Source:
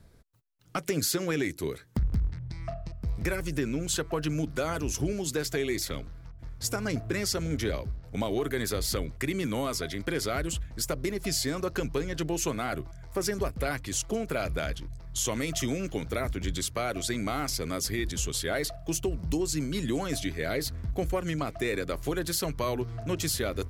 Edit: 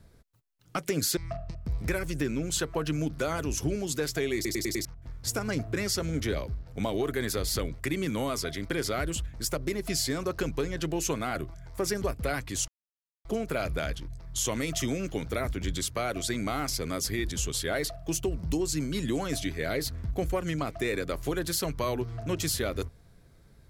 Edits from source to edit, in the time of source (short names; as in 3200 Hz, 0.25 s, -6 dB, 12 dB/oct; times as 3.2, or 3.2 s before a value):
1.17–2.54 cut
5.72 stutter in place 0.10 s, 5 plays
14.05 insert silence 0.57 s